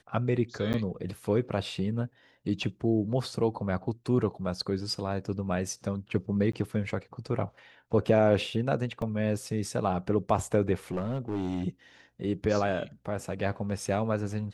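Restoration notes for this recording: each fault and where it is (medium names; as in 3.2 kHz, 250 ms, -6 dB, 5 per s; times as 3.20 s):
0.73–0.74 s: dropout 9.6 ms
6.52–6.53 s: dropout 14 ms
9.02 s: dropout 2.1 ms
10.91–11.67 s: clipped -26.5 dBFS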